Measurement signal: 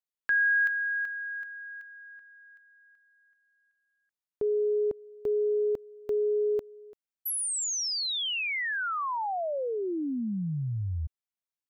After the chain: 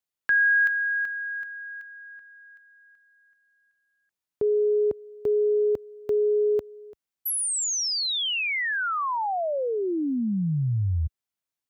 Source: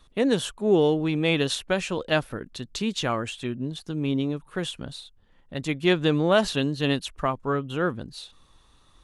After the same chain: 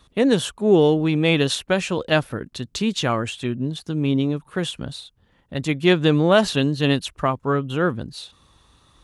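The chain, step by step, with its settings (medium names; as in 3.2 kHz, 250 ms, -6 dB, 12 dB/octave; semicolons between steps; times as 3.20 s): high-pass 69 Hz 12 dB/octave; bass shelf 110 Hz +7 dB; trim +4 dB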